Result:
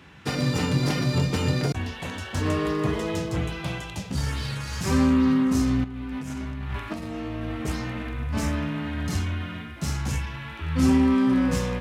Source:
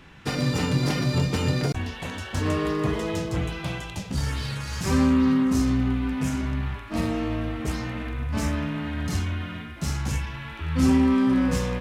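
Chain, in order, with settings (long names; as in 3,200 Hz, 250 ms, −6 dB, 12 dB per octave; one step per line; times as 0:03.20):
high-pass filter 55 Hz 24 dB per octave
0:05.84–0:07.51: compressor whose output falls as the input rises −32 dBFS, ratio −1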